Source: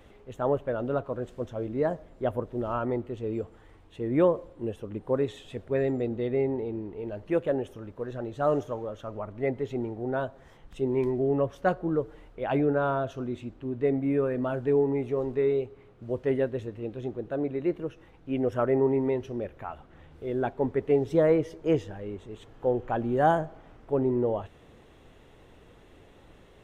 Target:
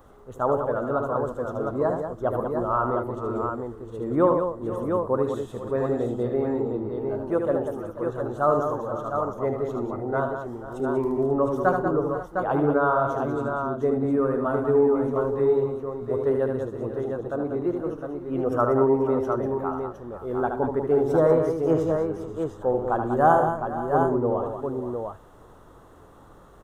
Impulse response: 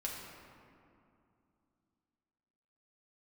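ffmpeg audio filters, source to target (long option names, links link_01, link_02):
-af "highshelf=frequency=1700:width_type=q:width=3:gain=-11.5,crystalizer=i=4.5:c=0,aecho=1:1:75|125|190|485|537|708:0.501|0.119|0.422|0.178|0.141|0.531"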